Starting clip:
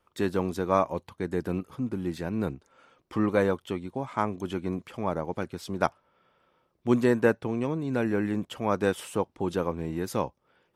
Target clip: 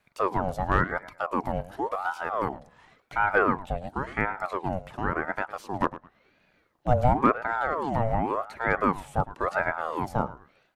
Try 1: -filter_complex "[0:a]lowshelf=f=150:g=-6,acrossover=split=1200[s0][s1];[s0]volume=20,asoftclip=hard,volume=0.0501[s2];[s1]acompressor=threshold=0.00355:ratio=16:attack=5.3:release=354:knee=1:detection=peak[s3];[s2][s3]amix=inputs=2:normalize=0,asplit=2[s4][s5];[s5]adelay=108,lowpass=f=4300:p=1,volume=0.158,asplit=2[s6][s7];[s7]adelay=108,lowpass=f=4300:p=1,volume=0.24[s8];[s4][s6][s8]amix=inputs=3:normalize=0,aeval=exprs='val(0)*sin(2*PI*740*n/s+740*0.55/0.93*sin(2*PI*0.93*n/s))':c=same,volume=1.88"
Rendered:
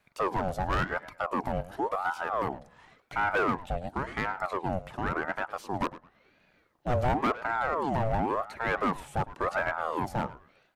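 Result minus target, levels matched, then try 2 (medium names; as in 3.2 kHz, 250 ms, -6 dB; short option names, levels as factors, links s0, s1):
overload inside the chain: distortion +20 dB
-filter_complex "[0:a]lowshelf=f=150:g=-6,acrossover=split=1200[s0][s1];[s0]volume=5.01,asoftclip=hard,volume=0.2[s2];[s1]acompressor=threshold=0.00355:ratio=16:attack=5.3:release=354:knee=1:detection=peak[s3];[s2][s3]amix=inputs=2:normalize=0,asplit=2[s4][s5];[s5]adelay=108,lowpass=f=4300:p=1,volume=0.158,asplit=2[s6][s7];[s7]adelay=108,lowpass=f=4300:p=1,volume=0.24[s8];[s4][s6][s8]amix=inputs=3:normalize=0,aeval=exprs='val(0)*sin(2*PI*740*n/s+740*0.55/0.93*sin(2*PI*0.93*n/s))':c=same,volume=1.88"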